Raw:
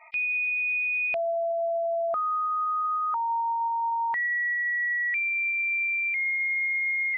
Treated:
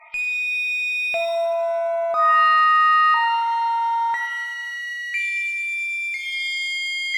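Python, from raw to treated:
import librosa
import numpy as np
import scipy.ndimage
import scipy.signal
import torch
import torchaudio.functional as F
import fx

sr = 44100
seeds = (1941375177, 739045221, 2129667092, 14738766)

p1 = fx.clip_asym(x, sr, top_db=-38.5, bottom_db=-28.0)
p2 = x + (p1 * 10.0 ** (-5.0 / 20.0))
y = fx.rev_shimmer(p2, sr, seeds[0], rt60_s=1.2, semitones=7, shimmer_db=-8, drr_db=2.5)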